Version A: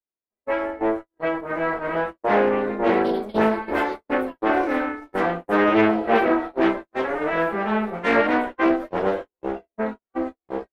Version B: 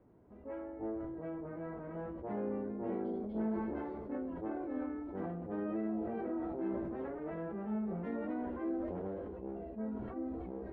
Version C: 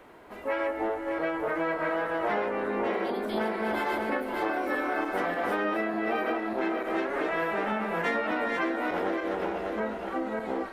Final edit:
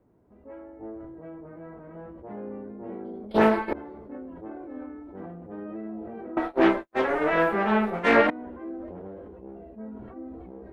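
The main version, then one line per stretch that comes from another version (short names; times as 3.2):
B
3.31–3.73 from A
6.37–8.3 from A
not used: C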